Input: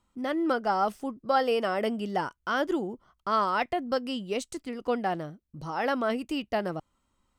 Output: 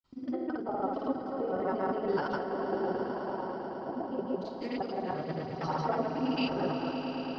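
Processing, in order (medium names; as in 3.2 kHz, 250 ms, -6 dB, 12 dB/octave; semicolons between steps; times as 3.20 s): time reversed locally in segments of 108 ms; time-frequency box 2.41–4.54 s, 510–1100 Hz +12 dB; low-pass that closes with the level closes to 710 Hz, closed at -23 dBFS; compressor with a negative ratio -30 dBFS, ratio -0.5; gated-style reverb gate 80 ms falling, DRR 2 dB; granulator, pitch spread up and down by 0 st; four-pole ladder low-pass 5.2 kHz, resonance 70%; granulator, pitch spread up and down by 0 st; echo with a slow build-up 109 ms, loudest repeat 5, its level -12 dB; trim +8.5 dB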